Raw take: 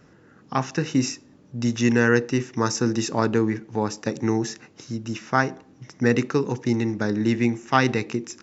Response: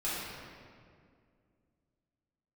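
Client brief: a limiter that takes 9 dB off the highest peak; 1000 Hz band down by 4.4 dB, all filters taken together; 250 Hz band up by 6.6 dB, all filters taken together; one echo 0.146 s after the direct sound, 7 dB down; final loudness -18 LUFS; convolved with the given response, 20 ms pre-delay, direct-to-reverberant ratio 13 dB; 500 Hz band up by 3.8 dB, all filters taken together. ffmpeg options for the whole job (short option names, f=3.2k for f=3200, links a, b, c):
-filter_complex "[0:a]equalizer=f=250:t=o:g=7,equalizer=f=500:t=o:g=3.5,equalizer=f=1k:t=o:g=-7.5,alimiter=limit=-12.5dB:level=0:latency=1,aecho=1:1:146:0.447,asplit=2[a][b];[1:a]atrim=start_sample=2205,adelay=20[c];[b][c]afir=irnorm=-1:irlink=0,volume=-19.5dB[d];[a][d]amix=inputs=2:normalize=0,volume=5.5dB"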